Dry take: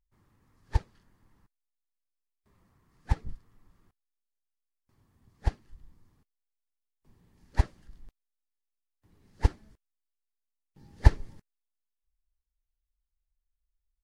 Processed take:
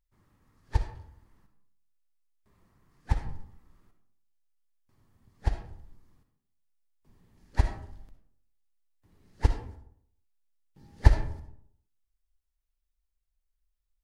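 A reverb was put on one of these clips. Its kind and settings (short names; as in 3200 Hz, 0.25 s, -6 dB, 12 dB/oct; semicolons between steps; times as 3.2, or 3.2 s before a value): digital reverb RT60 0.68 s, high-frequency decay 0.5×, pre-delay 20 ms, DRR 6 dB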